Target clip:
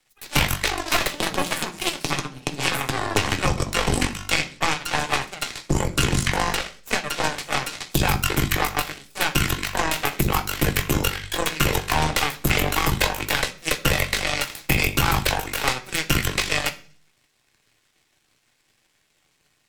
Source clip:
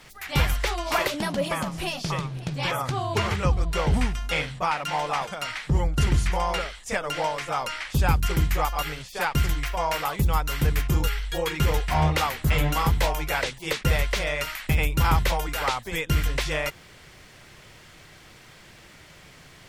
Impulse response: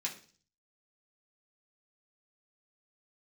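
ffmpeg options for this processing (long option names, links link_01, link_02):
-filter_complex "[0:a]aeval=exprs='0.355*(cos(1*acos(clip(val(0)/0.355,-1,1)))-cos(1*PI/2))+0.0112*(cos(3*acos(clip(val(0)/0.355,-1,1)))-cos(3*PI/2))+0.0891*(cos(4*acos(clip(val(0)/0.355,-1,1)))-cos(4*PI/2))+0.0447*(cos(7*acos(clip(val(0)/0.355,-1,1)))-cos(7*PI/2))':channel_layout=same,acrossover=split=120|4200[link_01][link_02][link_03];[link_01]acompressor=threshold=-29dB:ratio=4[link_04];[link_02]acompressor=threshold=-29dB:ratio=4[link_05];[link_03]acompressor=threshold=-42dB:ratio=4[link_06];[link_04][link_05][link_06]amix=inputs=3:normalize=0,asplit=2[link_07][link_08];[1:a]atrim=start_sample=2205,highshelf=frequency=3800:gain=8.5[link_09];[link_08][link_09]afir=irnorm=-1:irlink=0,volume=-5dB[link_10];[link_07][link_10]amix=inputs=2:normalize=0,volume=7.5dB"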